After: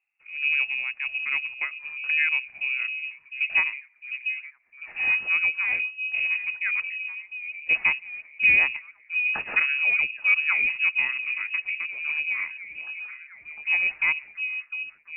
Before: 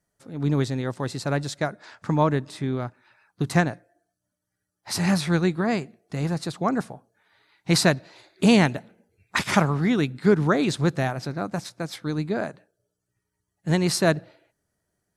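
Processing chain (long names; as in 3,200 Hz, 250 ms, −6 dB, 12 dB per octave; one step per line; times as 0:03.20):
tilt shelving filter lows +6.5 dB
echo through a band-pass that steps 703 ms, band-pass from 180 Hz, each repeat 0.7 octaves, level −6 dB
voice inversion scrambler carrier 2,700 Hz
level −7.5 dB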